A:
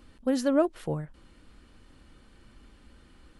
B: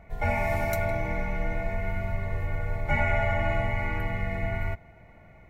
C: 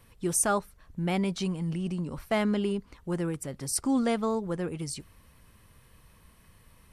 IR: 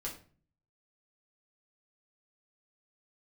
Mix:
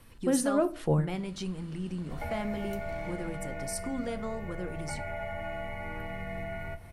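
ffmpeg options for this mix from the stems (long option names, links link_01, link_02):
-filter_complex "[0:a]dynaudnorm=framelen=120:gausssize=3:maxgain=15dB,volume=-10dB,asplit=2[link_01][link_02];[link_02]volume=-12.5dB[link_03];[1:a]acrossover=split=100|1100[link_04][link_05][link_06];[link_04]acompressor=threshold=-35dB:ratio=4[link_07];[link_05]acompressor=threshold=-34dB:ratio=4[link_08];[link_06]acompressor=threshold=-39dB:ratio=4[link_09];[link_07][link_08][link_09]amix=inputs=3:normalize=0,adelay=2000,volume=-0.5dB,asplit=2[link_10][link_11];[link_11]volume=-12.5dB[link_12];[2:a]volume=0.5dB,asplit=3[link_13][link_14][link_15];[link_14]volume=-16.5dB[link_16];[link_15]apad=whole_len=149740[link_17];[link_01][link_17]sidechaincompress=threshold=-28dB:ratio=8:attack=42:release=594[link_18];[link_10][link_13]amix=inputs=2:normalize=0,acompressor=threshold=-37dB:ratio=4,volume=0dB[link_19];[3:a]atrim=start_sample=2205[link_20];[link_03][link_12][link_16]amix=inputs=3:normalize=0[link_21];[link_21][link_20]afir=irnorm=-1:irlink=0[link_22];[link_18][link_19][link_22]amix=inputs=3:normalize=0"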